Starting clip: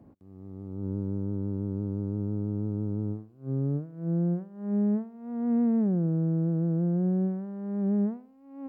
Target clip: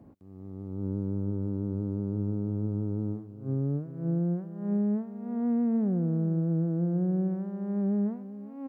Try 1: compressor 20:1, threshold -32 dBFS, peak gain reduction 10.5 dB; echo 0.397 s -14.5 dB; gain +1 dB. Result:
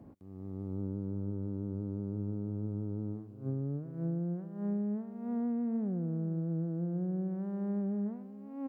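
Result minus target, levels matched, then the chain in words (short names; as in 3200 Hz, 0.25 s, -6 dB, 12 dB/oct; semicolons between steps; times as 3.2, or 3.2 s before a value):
compressor: peak gain reduction +7 dB
compressor 20:1, threshold -24.5 dBFS, peak gain reduction 3.5 dB; echo 0.397 s -14.5 dB; gain +1 dB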